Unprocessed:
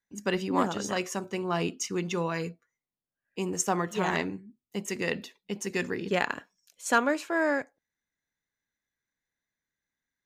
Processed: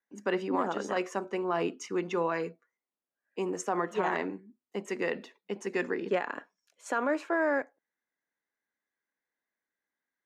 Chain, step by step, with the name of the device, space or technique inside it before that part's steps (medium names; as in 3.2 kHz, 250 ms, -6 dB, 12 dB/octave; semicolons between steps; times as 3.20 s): DJ mixer with the lows and highs turned down (three-band isolator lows -22 dB, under 240 Hz, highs -13 dB, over 2.1 kHz; peak limiter -21 dBFS, peak gain reduction 10.5 dB); low-pass 10 kHz 12 dB/octave; trim +2.5 dB